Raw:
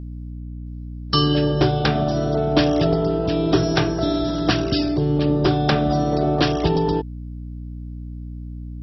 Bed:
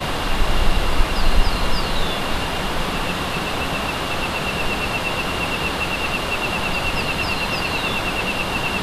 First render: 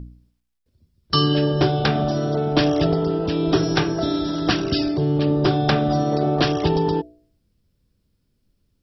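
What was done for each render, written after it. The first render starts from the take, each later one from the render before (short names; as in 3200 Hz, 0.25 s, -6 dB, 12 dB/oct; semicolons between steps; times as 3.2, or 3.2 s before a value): de-hum 60 Hz, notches 11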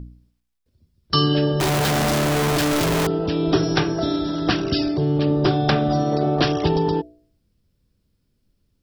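1.6–3.07 infinite clipping; 4.16–4.67 air absorption 51 m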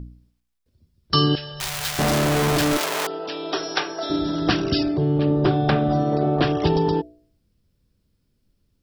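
1.35–1.99 passive tone stack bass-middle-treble 10-0-10; 2.77–4.1 HPF 610 Hz; 4.83–6.62 air absorption 210 m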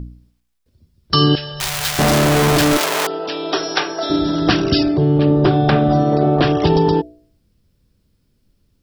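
gain +6 dB; limiter -3 dBFS, peak gain reduction 3 dB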